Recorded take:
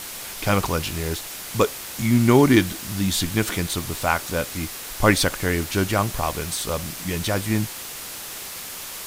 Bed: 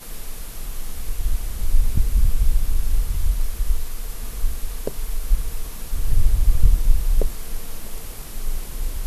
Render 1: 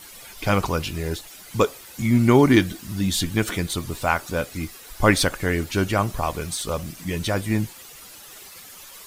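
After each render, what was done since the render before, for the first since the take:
broadband denoise 12 dB, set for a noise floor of −35 dBFS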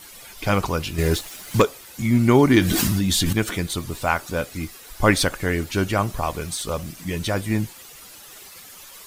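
0:00.98–0:01.62: leveller curve on the samples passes 2
0:02.61–0:03.33: envelope flattener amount 100%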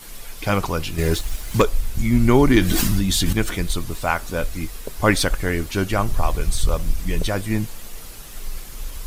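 mix in bed −5.5 dB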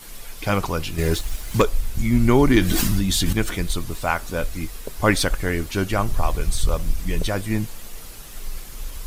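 level −1 dB
brickwall limiter −3 dBFS, peak gain reduction 1 dB

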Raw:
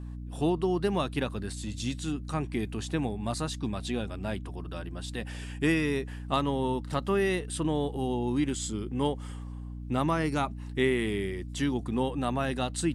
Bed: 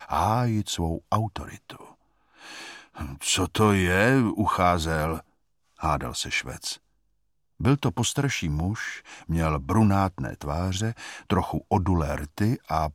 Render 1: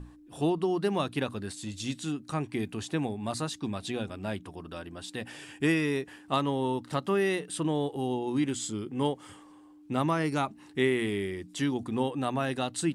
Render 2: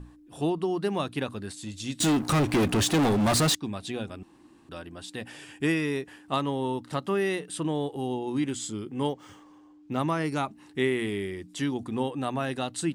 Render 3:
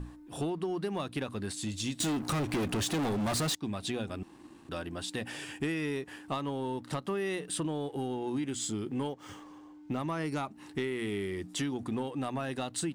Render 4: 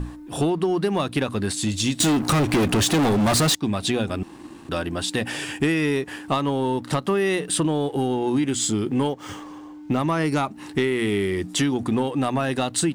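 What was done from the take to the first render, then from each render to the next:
mains-hum notches 60/120/180/240 Hz
0:02.00–0:03.55: leveller curve on the samples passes 5; 0:04.23–0:04.69: fill with room tone; 0:09.09–0:09.99: linearly interpolated sample-rate reduction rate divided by 3×
downward compressor 6 to 1, threshold −34 dBFS, peak gain reduction 12.5 dB; leveller curve on the samples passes 1
level +11.5 dB

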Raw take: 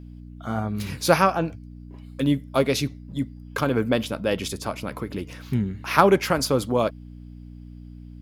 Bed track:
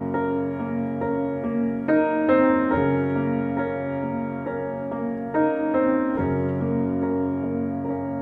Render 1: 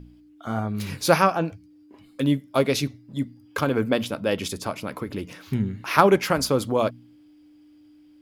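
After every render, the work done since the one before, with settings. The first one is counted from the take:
hum removal 60 Hz, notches 4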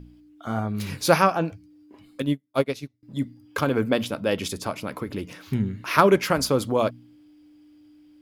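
0:02.22–0:03.03: expander for the loud parts 2.5 to 1, over −34 dBFS
0:05.69–0:06.31: notch filter 800 Hz, Q 7.4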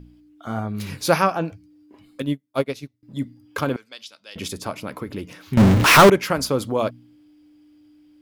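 0:03.76–0:04.36: resonant band-pass 4,900 Hz, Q 2
0:05.57–0:06.10: power curve on the samples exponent 0.35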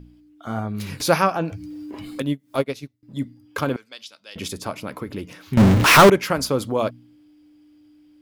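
0:01.00–0:02.63: upward compression, threshold −20 dBFS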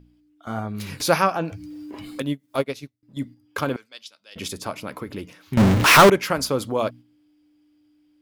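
low-shelf EQ 430 Hz −3 dB
noise gate −39 dBFS, range −6 dB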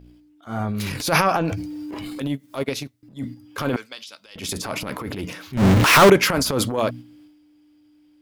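in parallel at −2.5 dB: downward compressor, threshold −26 dBFS, peak gain reduction 16.5 dB
on the sum: transient designer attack −11 dB, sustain +8 dB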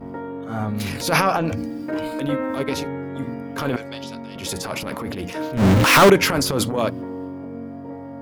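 mix in bed track −7.5 dB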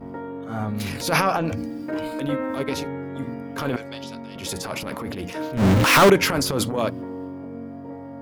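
level −2 dB

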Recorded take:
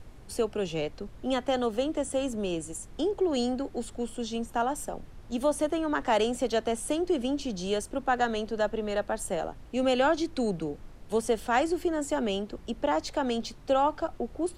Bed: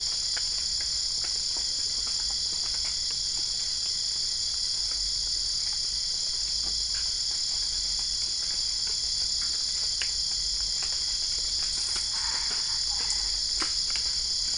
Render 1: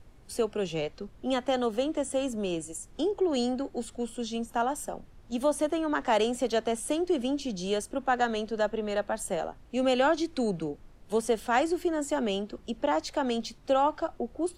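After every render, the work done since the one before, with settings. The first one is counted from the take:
noise reduction from a noise print 6 dB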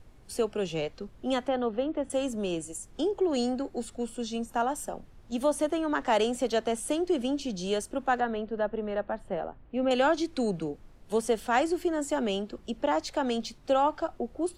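0:01.48–0:02.10: high-frequency loss of the air 370 metres
0:03.35–0:04.69: notch filter 3,200 Hz, Q 13
0:08.20–0:09.91: high-frequency loss of the air 480 metres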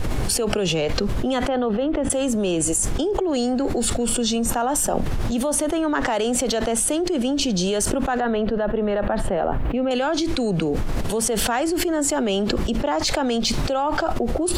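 envelope flattener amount 100%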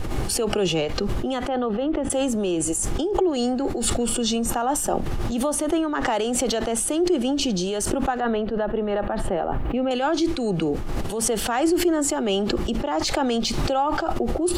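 hollow resonant body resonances 350/810/1,200/2,900 Hz, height 6 dB
amplitude modulation by smooth noise, depth 55%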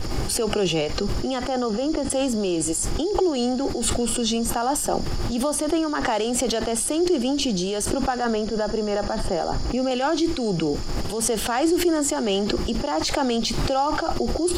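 mix in bed −12 dB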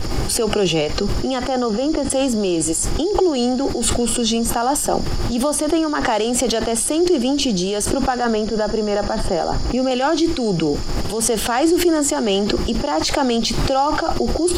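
level +4.5 dB

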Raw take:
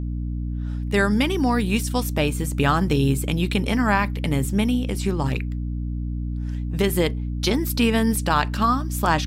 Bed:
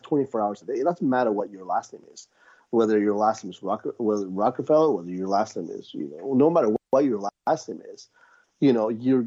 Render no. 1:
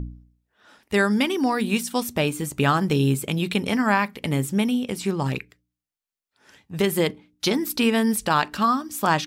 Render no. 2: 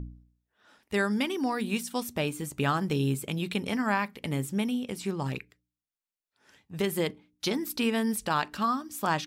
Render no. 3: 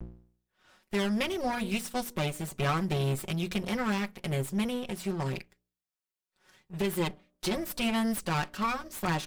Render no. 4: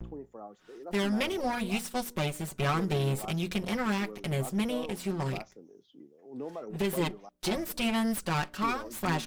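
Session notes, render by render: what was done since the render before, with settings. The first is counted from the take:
hum removal 60 Hz, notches 5
level −7 dB
lower of the sound and its delayed copy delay 5.4 ms; soft clipping −19 dBFS, distortion −21 dB
mix in bed −20.5 dB

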